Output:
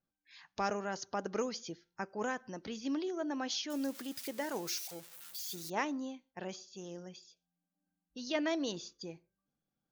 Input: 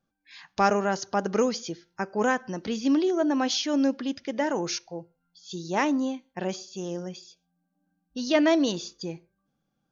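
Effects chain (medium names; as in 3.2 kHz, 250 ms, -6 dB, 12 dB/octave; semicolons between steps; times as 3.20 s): 3.70–5.70 s: zero-crossing glitches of -26 dBFS; harmonic-percussive split harmonic -5 dB; trim -8 dB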